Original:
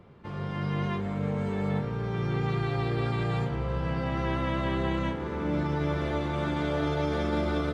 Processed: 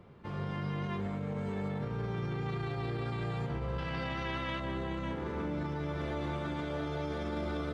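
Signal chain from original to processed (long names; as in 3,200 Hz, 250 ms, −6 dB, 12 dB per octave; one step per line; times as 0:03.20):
0:03.78–0:04.60: parametric band 3,300 Hz +10.5 dB 2.6 octaves
brickwall limiter −26 dBFS, peak gain reduction 10 dB
level −2 dB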